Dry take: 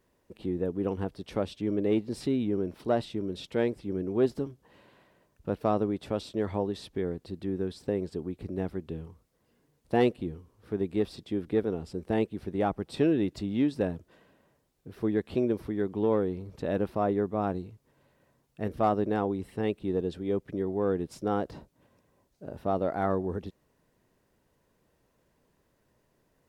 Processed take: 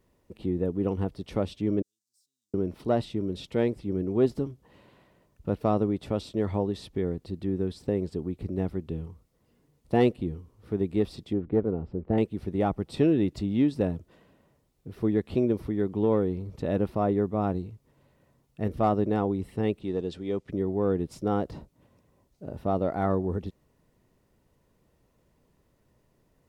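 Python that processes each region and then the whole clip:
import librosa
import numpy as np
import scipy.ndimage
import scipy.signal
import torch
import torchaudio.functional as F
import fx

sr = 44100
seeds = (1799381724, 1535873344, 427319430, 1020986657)

y = fx.chain(x, sr, fx.zero_step(step_db=-38.0),
    fx.cheby2_highpass(hz=2200.0, order=4, stop_db=70),
    fx.air_absorb(metres=190.0), at=(1.82, 2.54))
y = fx.chain(y, sr, fx.lowpass(hz=1400.0, slope=12),
    fx.doppler_dist(depth_ms=0.14), at=(11.33, 12.18))
y = fx.chain(y, sr, fx.lowpass(hz=7100.0, slope=12),
    fx.tilt_eq(slope=2.0), at=(19.81, 20.5))
y = fx.low_shelf(y, sr, hz=220.0, db=7.0)
y = fx.notch(y, sr, hz=1600.0, q=12.0)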